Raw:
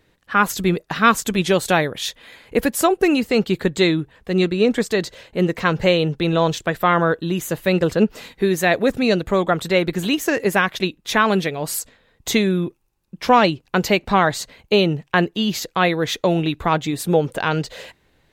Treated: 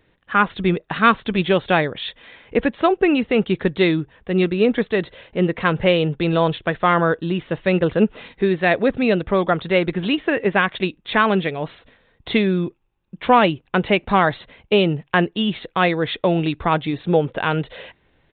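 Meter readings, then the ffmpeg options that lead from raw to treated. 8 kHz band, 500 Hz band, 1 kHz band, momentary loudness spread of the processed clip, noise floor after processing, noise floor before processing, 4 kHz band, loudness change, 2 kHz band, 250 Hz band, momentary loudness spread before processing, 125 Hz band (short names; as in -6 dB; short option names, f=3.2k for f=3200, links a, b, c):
under -40 dB, 0.0 dB, 0.0 dB, 7 LU, -62 dBFS, -62 dBFS, -2.0 dB, 0.0 dB, 0.0 dB, 0.0 dB, 7 LU, 0.0 dB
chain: -af "aresample=8000,aresample=44100"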